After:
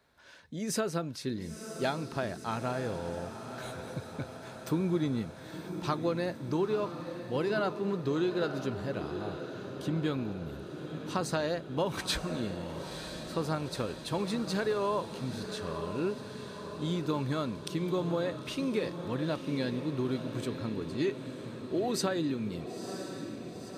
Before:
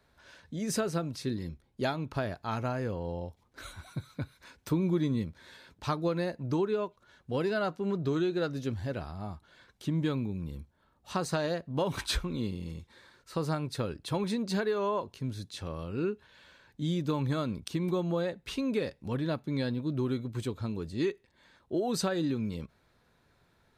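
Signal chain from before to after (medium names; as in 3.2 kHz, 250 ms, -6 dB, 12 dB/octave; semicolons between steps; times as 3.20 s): bass shelf 88 Hz -11.5 dB; echo that smears into a reverb 967 ms, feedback 64%, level -9 dB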